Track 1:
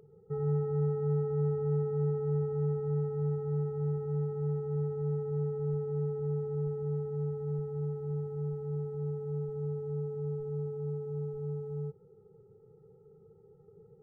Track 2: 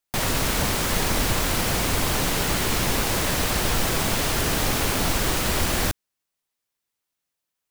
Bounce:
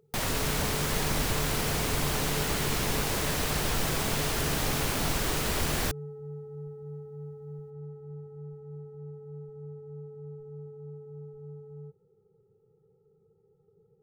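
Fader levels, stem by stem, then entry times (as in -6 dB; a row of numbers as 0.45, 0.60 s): -7.5, -6.0 dB; 0.00, 0.00 s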